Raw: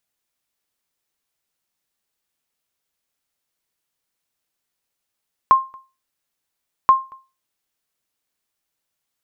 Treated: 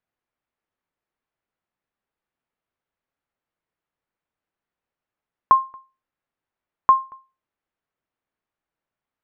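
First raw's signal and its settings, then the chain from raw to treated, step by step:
sonar ping 1.06 kHz, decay 0.29 s, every 1.38 s, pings 2, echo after 0.23 s, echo -29 dB -4 dBFS
low-pass 1.8 kHz 12 dB/octave

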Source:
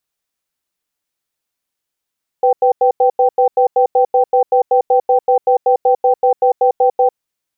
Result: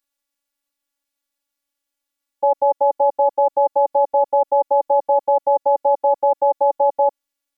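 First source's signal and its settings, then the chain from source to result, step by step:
cadence 499 Hz, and 779 Hz, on 0.10 s, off 0.09 s, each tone -11 dBFS 4.67 s
robot voice 282 Hz

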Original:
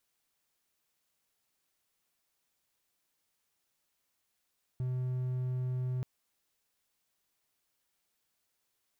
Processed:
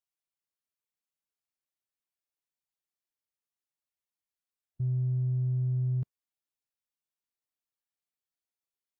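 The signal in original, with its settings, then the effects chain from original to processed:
tone triangle 127 Hz -29 dBFS 1.23 s
in parallel at -2 dB: compressor with a negative ratio -40 dBFS, ratio -0.5; on the sum: spectral contrast expander 1.5:1

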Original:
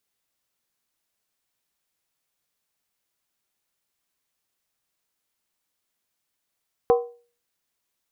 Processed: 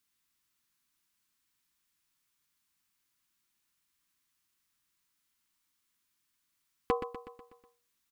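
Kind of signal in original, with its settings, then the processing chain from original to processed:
skin hit, lowest mode 477 Hz, decay 0.39 s, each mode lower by 7 dB, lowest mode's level -11.5 dB
hard clipper -11 dBFS; high-order bell 570 Hz -11.5 dB 1.2 oct; on a send: feedback delay 123 ms, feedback 55%, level -9.5 dB

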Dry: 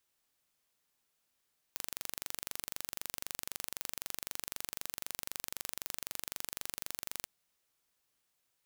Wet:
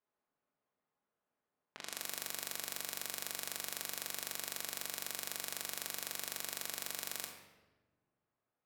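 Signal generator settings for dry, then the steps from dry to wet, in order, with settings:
pulse train 23.9 per s, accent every 0, -10.5 dBFS 5.49 s
level-controlled noise filter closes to 950 Hz, open at -52 dBFS; high-pass 250 Hz 6 dB/octave; simulated room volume 790 m³, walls mixed, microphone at 1.4 m

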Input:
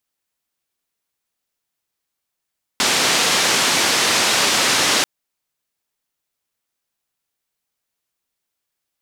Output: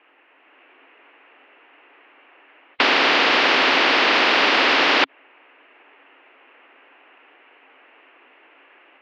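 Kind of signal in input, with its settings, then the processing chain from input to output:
noise band 170–6000 Hz, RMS -17 dBFS 2.24 s
Chebyshev band-pass 270–2800 Hz, order 5; level rider gain up to 5 dB; spectrum-flattening compressor 4:1

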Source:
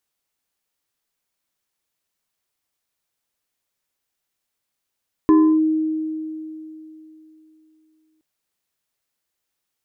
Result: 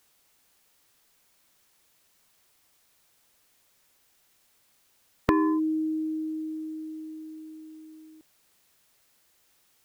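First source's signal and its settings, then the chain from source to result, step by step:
FM tone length 2.92 s, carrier 314 Hz, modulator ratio 2.26, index 0.5, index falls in 0.31 s linear, decay 3.22 s, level -8.5 dB
spectrum-flattening compressor 2:1

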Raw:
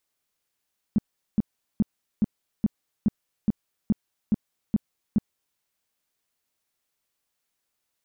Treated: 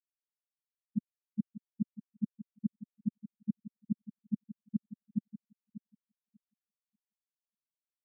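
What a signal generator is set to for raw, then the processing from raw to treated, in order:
tone bursts 213 Hz, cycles 5, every 0.42 s, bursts 11, -16 dBFS
gate -20 dBFS, range -17 dB; feedback delay 591 ms, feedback 42%, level -5.5 dB; spectral contrast expander 2.5:1

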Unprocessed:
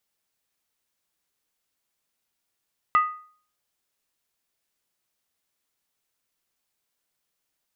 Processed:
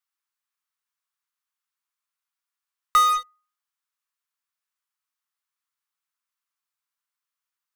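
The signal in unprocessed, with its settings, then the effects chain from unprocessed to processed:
skin hit, lowest mode 1.24 kHz, decay 0.48 s, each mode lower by 11 dB, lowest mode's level -13 dB
ladder high-pass 970 Hz, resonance 50%; in parallel at -6.5 dB: fuzz box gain 45 dB, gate -50 dBFS

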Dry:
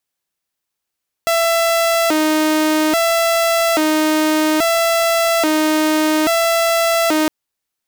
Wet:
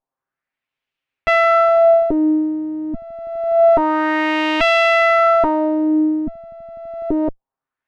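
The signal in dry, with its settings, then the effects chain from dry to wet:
siren hi-lo 310–668 Hz 0.6 per s saw -10.5 dBFS 6.01 s
comb filter that takes the minimum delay 7.5 ms; LFO low-pass sine 0.27 Hz 210–2800 Hz

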